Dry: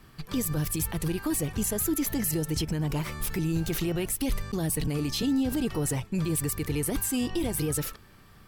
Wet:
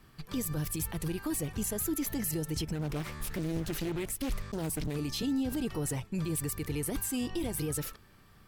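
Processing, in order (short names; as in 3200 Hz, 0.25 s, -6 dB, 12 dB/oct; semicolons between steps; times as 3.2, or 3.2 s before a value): 2.75–4.96 Doppler distortion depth 0.74 ms; gain -5 dB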